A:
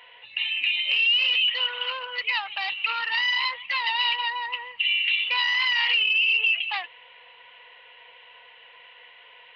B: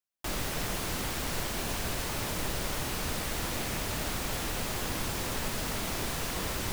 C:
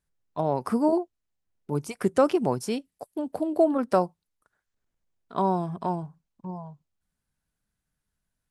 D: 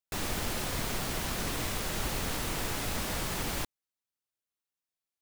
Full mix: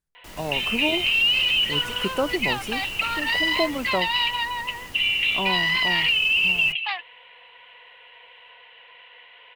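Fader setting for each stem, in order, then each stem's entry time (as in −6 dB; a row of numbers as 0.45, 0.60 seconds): +1.0, −10.0, −4.0, −8.5 decibels; 0.15, 0.00, 0.00, 0.25 seconds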